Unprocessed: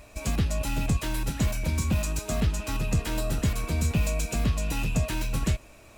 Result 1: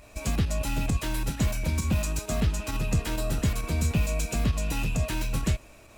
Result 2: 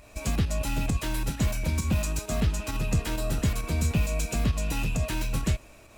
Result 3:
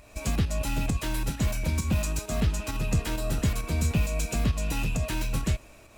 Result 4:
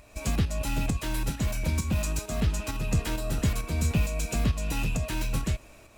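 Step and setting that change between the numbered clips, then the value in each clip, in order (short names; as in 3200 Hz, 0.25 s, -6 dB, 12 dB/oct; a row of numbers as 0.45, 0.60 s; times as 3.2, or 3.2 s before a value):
pump, release: 63, 103, 169, 374 ms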